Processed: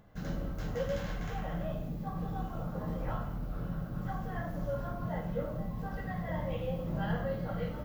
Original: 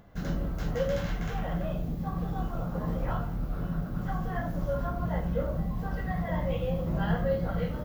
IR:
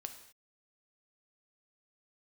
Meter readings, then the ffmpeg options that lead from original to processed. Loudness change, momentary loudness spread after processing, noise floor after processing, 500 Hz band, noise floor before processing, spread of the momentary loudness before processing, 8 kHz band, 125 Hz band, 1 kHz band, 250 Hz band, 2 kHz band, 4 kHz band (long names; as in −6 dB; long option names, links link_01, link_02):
−5.0 dB, 4 LU, −40 dBFS, −5.0 dB, −35 dBFS, 4 LU, can't be measured, −5.0 dB, −4.0 dB, −5.0 dB, −4.0 dB, −4.5 dB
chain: -filter_complex "[1:a]atrim=start_sample=2205[link_01];[0:a][link_01]afir=irnorm=-1:irlink=0,volume=-1dB"